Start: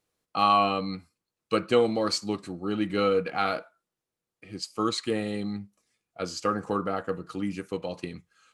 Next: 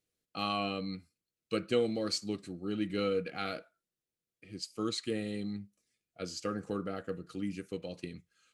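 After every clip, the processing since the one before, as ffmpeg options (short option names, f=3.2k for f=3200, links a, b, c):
-af "equalizer=f=960:w=1.6:g=-14,volume=-5dB"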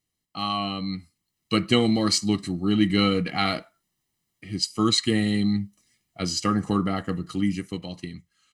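-af "aecho=1:1:1:0.68,dynaudnorm=f=260:g=9:m=9.5dB,volume=3dB"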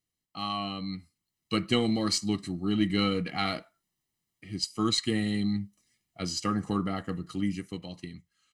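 -af "aeval=exprs='0.473*(cos(1*acos(clip(val(0)/0.473,-1,1)))-cos(1*PI/2))+0.0119*(cos(4*acos(clip(val(0)/0.473,-1,1)))-cos(4*PI/2))':c=same,volume=-5.5dB"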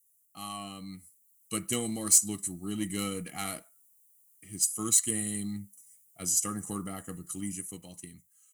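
-af "aeval=exprs='0.251*(cos(1*acos(clip(val(0)/0.251,-1,1)))-cos(1*PI/2))+0.0355*(cos(2*acos(clip(val(0)/0.251,-1,1)))-cos(2*PI/2))+0.00398*(cos(8*acos(clip(val(0)/0.251,-1,1)))-cos(8*PI/2))':c=same,aexciter=amount=15.2:drive=8.7:freq=6.9k,volume=-7.5dB"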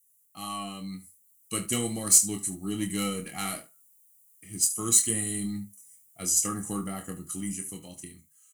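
-filter_complex "[0:a]flanger=delay=8.5:depth=3.4:regen=-66:speed=0.33:shape=triangular,asplit=2[a][b];[b]aecho=0:1:26|74:0.447|0.15[c];[a][c]amix=inputs=2:normalize=0,volume=6.5dB"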